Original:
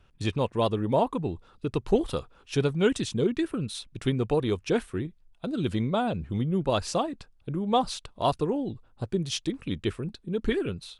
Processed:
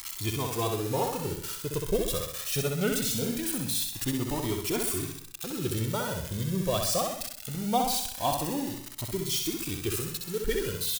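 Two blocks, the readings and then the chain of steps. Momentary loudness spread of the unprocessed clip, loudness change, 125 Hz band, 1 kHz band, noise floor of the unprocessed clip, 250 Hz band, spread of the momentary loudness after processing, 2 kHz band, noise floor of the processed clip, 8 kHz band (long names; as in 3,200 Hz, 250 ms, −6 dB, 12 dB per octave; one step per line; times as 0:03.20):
9 LU, −1.0 dB, −2.5 dB, −2.0 dB, −61 dBFS, −4.0 dB, 6 LU, 0.0 dB, −42 dBFS, +11.0 dB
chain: spike at every zero crossing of −19.5 dBFS
repeating echo 64 ms, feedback 50%, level −4.5 dB
flanger whose copies keep moving one way rising 0.22 Hz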